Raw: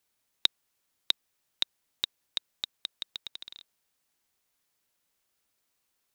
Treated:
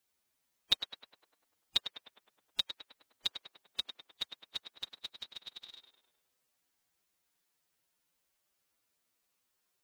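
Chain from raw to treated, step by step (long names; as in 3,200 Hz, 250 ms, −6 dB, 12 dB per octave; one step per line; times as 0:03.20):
tape delay 64 ms, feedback 66%, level −6 dB, low-pass 2,500 Hz
phase-vocoder stretch with locked phases 1.6×
level −2.5 dB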